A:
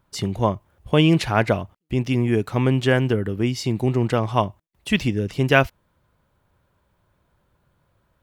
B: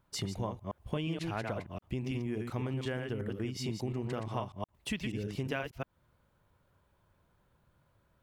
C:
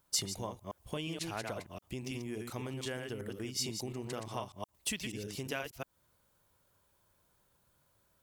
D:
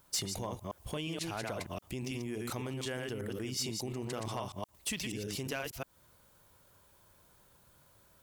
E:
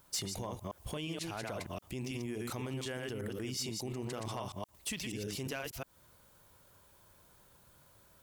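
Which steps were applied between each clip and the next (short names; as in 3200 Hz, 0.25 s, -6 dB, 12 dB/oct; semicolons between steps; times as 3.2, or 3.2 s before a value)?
reverse delay 0.119 s, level -4.5 dB; compressor 6:1, threshold -27 dBFS, peak gain reduction 16 dB; gain -6 dB
tone controls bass -5 dB, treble +14 dB; gain -2.5 dB
in parallel at -3 dB: negative-ratio compressor -46 dBFS, ratio -0.5; on the sum: overloaded stage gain 28 dB
limiter -31.5 dBFS, peak gain reduction 3.5 dB; gain +1 dB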